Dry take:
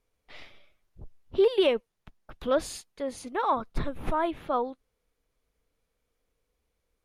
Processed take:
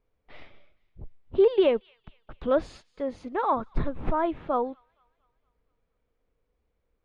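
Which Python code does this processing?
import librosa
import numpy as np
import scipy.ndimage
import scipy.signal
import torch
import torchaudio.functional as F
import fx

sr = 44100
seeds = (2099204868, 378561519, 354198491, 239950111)

p1 = fx.spacing_loss(x, sr, db_at_10k=29)
p2 = p1 + fx.echo_wet_highpass(p1, sr, ms=232, feedback_pct=51, hz=2100.0, wet_db=-21.5, dry=0)
y = F.gain(torch.from_numpy(p2), 3.5).numpy()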